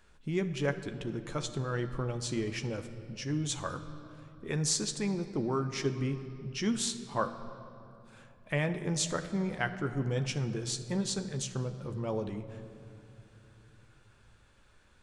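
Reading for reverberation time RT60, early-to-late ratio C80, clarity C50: 2.7 s, 12.0 dB, 11.0 dB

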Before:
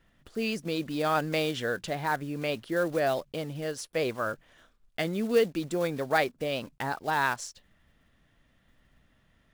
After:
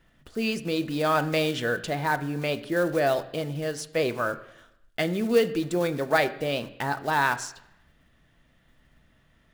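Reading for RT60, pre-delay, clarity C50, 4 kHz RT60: 0.85 s, 3 ms, 15.5 dB, 0.90 s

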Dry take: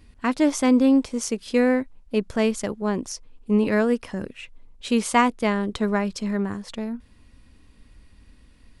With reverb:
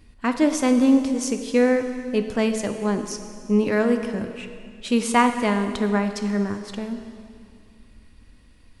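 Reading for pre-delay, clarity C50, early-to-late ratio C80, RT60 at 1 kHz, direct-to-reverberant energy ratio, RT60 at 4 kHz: 4 ms, 8.0 dB, 9.0 dB, 2.3 s, 7.0 dB, 2.1 s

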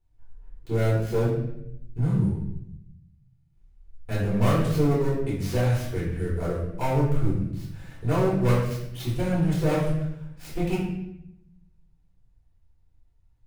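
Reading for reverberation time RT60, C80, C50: 0.75 s, 5.0 dB, 2.0 dB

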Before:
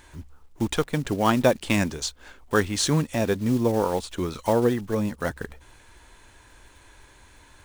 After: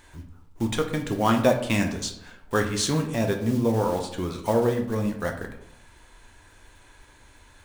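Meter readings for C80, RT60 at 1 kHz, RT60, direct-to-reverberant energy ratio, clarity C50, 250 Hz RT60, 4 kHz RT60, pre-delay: 12.0 dB, 0.70 s, 0.75 s, 3.5 dB, 8.5 dB, 0.90 s, 0.45 s, 8 ms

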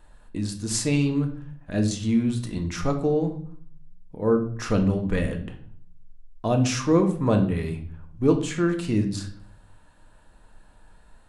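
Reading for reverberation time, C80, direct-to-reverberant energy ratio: 0.55 s, 14.0 dB, 4.0 dB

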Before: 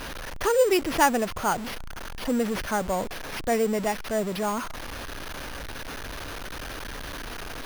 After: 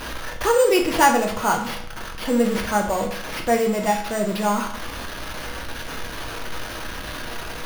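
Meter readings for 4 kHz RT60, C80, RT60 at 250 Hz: 0.55 s, 11.0 dB, 0.60 s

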